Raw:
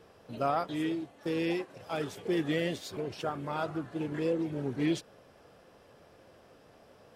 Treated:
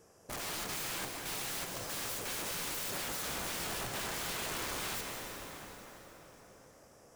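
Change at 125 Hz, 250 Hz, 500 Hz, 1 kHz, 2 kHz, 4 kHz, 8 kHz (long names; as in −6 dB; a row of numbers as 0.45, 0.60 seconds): −9.5, −15.5, −11.5, −5.0, +1.5, +5.0, +15.0 decibels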